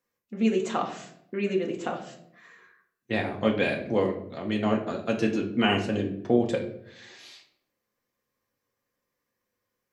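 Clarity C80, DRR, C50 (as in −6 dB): 13.0 dB, 0.0 dB, 9.5 dB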